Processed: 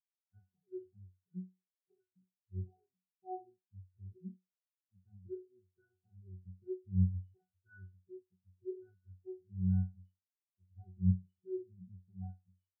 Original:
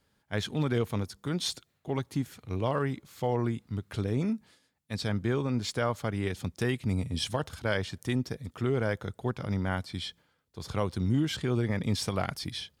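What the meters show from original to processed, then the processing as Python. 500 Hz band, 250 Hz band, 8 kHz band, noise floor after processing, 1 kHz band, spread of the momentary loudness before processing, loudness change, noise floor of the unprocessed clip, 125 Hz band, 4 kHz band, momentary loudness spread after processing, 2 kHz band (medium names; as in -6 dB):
-16.5 dB, -11.0 dB, under -35 dB, under -85 dBFS, -18.5 dB, 7 LU, -8.0 dB, -74 dBFS, -8.0 dB, under -40 dB, 23 LU, under -30 dB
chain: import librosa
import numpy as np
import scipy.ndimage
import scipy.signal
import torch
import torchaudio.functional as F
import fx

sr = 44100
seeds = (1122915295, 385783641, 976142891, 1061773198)

y = scipy.signal.sosfilt(scipy.signal.butter(2, 75.0, 'highpass', fs=sr, output='sos'), x)
y = fx.octave_resonator(y, sr, note='F#', decay_s=0.55)
y = fx.spectral_expand(y, sr, expansion=2.5)
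y = y * librosa.db_to_amplitude(8.0)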